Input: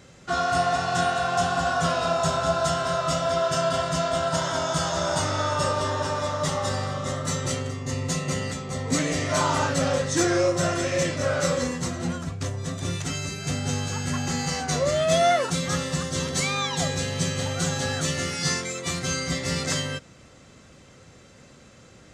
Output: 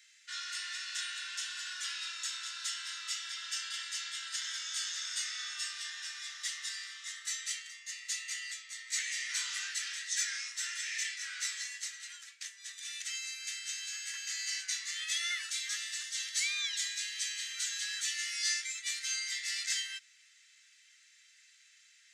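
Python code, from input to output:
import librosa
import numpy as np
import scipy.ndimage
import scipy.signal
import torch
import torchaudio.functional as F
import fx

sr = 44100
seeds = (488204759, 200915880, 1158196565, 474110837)

y = scipy.signal.sosfilt(scipy.signal.ellip(4, 1.0, 70, 1800.0, 'highpass', fs=sr, output='sos'), x)
y = F.gain(torch.from_numpy(y), -4.5).numpy()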